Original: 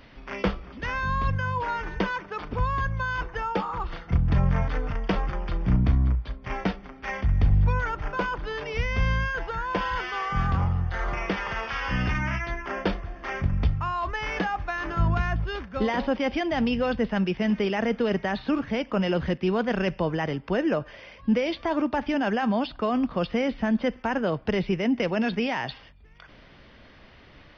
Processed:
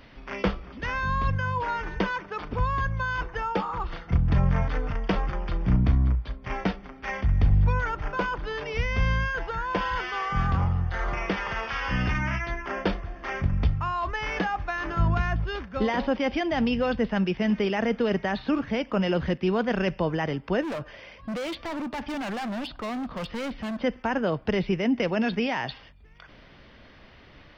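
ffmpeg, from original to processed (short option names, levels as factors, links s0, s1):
-filter_complex "[0:a]asplit=3[s0][s1][s2];[s0]afade=t=out:st=20.61:d=0.02[s3];[s1]asoftclip=type=hard:threshold=0.0335,afade=t=in:st=20.61:d=0.02,afade=t=out:st=23.78:d=0.02[s4];[s2]afade=t=in:st=23.78:d=0.02[s5];[s3][s4][s5]amix=inputs=3:normalize=0"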